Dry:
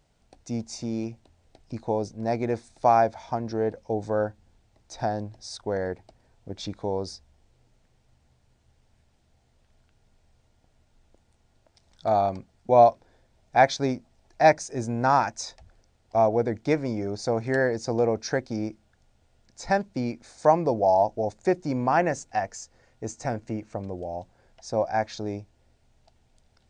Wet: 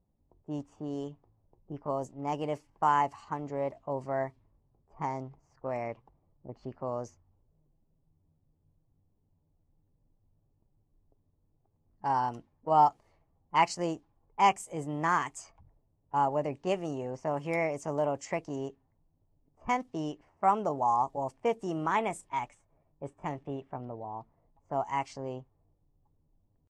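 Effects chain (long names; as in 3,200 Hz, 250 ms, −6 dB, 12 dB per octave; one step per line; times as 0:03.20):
low-pass that shuts in the quiet parts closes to 390 Hz, open at −22 dBFS
pitch shifter +4 semitones
level −6.5 dB
Ogg Vorbis 64 kbit/s 44,100 Hz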